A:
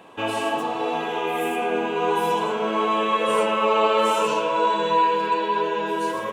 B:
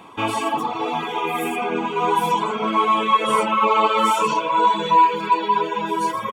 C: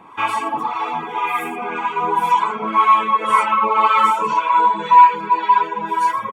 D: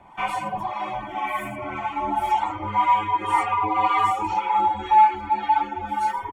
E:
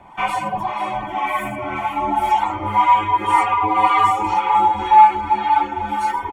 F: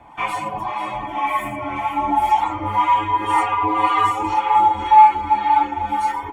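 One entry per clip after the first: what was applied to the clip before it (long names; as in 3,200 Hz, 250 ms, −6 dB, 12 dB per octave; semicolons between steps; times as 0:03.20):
reverb reduction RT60 0.92 s; comb filter 0.9 ms, depth 52%; level +4 dB
two-band tremolo in antiphase 1.9 Hz, depth 70%, crossover 720 Hz; flat-topped bell 1,400 Hz +9 dB; level −1.5 dB
frequency shifter −120 Hz; level −6 dB
repeating echo 492 ms, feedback 57%, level −13 dB; level +5 dB
notch comb filter 190 Hz; on a send at −12 dB: convolution reverb, pre-delay 3 ms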